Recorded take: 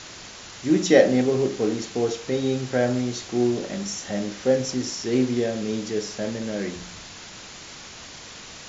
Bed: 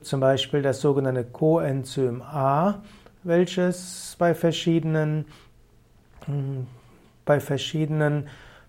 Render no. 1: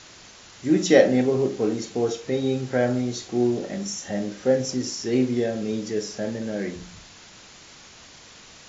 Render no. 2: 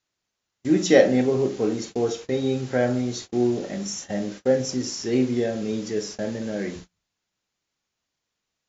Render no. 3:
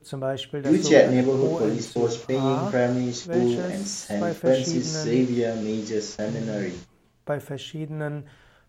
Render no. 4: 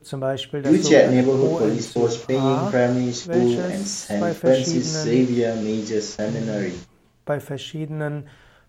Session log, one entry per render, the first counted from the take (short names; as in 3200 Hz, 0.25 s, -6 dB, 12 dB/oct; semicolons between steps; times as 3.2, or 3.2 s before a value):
noise print and reduce 6 dB
gate -36 dBFS, range -35 dB
add bed -7.5 dB
gain +3.5 dB; limiter -2 dBFS, peak gain reduction 3 dB